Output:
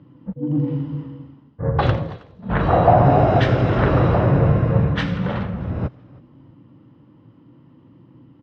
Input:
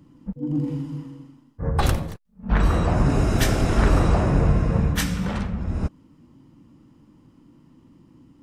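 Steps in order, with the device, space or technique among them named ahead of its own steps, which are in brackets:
0:02.68–0:03.40: parametric band 730 Hz +14.5 dB 0.55 octaves
frequency-shifting delay pedal into a guitar cabinet (echo with shifted repeats 318 ms, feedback 31%, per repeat −65 Hz, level −22 dB; loudspeaker in its box 99–3,400 Hz, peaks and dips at 120 Hz +8 dB, 220 Hz −4 dB, 540 Hz +5 dB, 2,400 Hz −4 dB)
delay with a high-pass on its return 83 ms, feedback 66%, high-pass 5,200 Hz, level −14.5 dB
level +3.5 dB

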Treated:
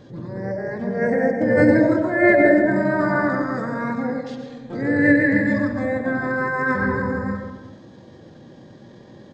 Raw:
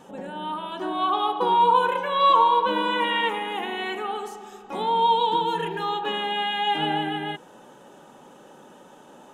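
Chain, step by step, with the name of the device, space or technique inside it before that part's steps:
monster voice (pitch shifter −8 semitones; formants moved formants −3 semitones; low-shelf EQ 100 Hz +5 dB; convolution reverb RT60 1.0 s, pre-delay 95 ms, DRR 4.5 dB)
level +2.5 dB

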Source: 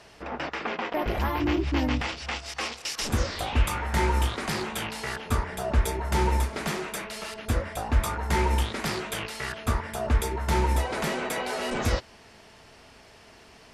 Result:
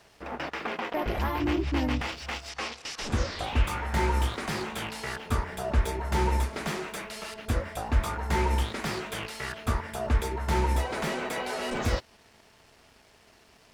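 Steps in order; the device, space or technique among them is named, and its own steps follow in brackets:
early transistor amplifier (dead-zone distortion −56 dBFS; slew-rate limiting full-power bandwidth 110 Hz)
0:02.49–0:03.44: low-pass filter 7,900 Hz 12 dB per octave
level −1.5 dB

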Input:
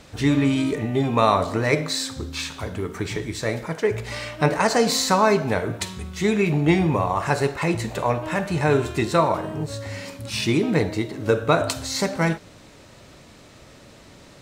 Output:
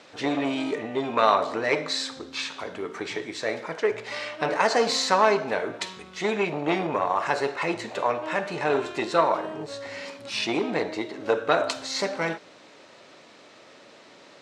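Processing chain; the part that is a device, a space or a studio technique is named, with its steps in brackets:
public-address speaker with an overloaded transformer (saturating transformer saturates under 770 Hz; band-pass filter 350–5,300 Hz)

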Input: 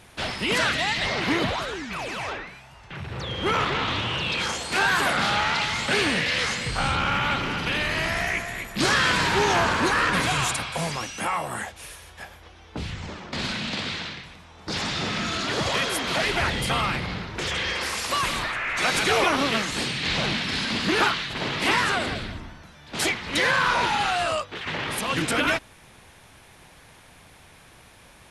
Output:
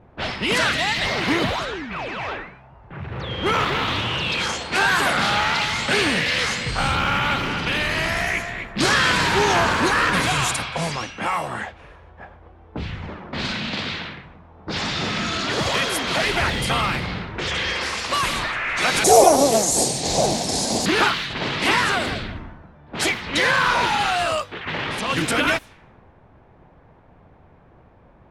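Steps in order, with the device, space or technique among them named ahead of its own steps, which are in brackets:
0:19.04–0:20.86: drawn EQ curve 220 Hz 0 dB, 730 Hz +12 dB, 1,300 Hz −12 dB, 3,000 Hz −12 dB, 6,800 Hz +15 dB
cassette deck with a dynamic noise filter (white noise bed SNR 32 dB; low-pass that shuts in the quiet parts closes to 710 Hz, open at −22 dBFS)
level +3 dB

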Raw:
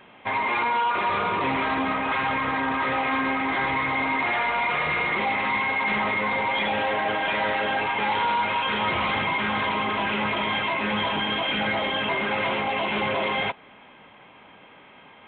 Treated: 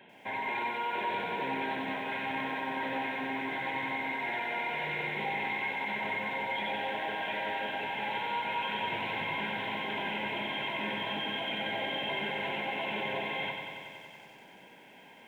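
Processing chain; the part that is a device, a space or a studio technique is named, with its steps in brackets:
PA system with an anti-feedback notch (high-pass filter 120 Hz 24 dB per octave; Butterworth band-reject 1,200 Hz, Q 2.8; brickwall limiter −23 dBFS, peak gain reduction 8 dB)
feedback echo at a low word length 93 ms, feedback 80%, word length 10 bits, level −6 dB
level −5 dB

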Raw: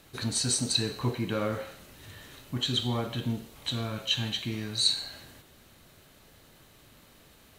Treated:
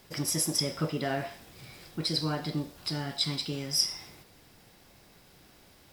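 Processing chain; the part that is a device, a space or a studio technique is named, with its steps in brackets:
nightcore (speed change +28%)
level −1 dB

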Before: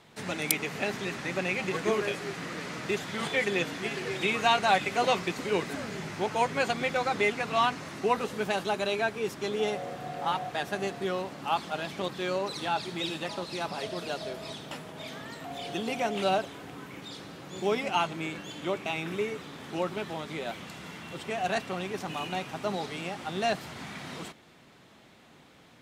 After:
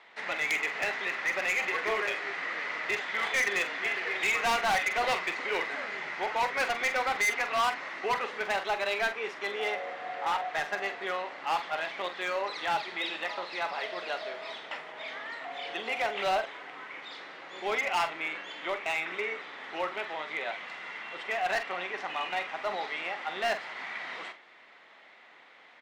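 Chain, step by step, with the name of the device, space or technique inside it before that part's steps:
megaphone (band-pass filter 680–3,100 Hz; parametric band 2,000 Hz +8 dB 0.28 octaves; hard clipping −27 dBFS, distortion −9 dB; double-tracking delay 45 ms −10 dB)
level +3 dB

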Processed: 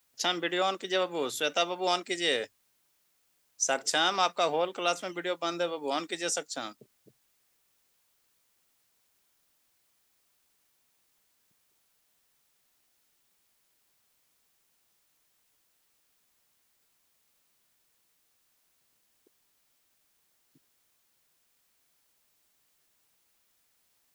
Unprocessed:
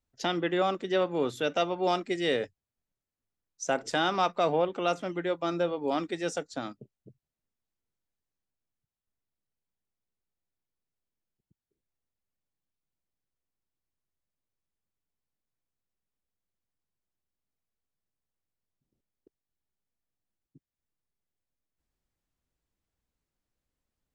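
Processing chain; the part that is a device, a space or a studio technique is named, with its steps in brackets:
turntable without a phono preamp (RIAA equalisation recording; white noise bed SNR 36 dB)

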